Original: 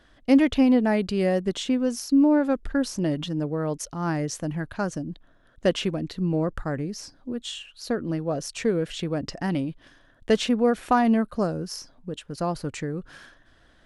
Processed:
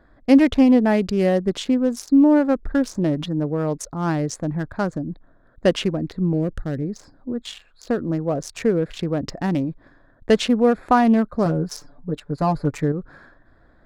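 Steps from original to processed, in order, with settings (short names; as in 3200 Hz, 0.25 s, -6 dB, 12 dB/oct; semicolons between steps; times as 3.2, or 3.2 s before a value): Wiener smoothing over 15 samples; 6.33–6.82 bell 1000 Hz -14.5 dB 1.1 oct; 11.45–12.92 comb 6.9 ms, depth 92%; gain +4.5 dB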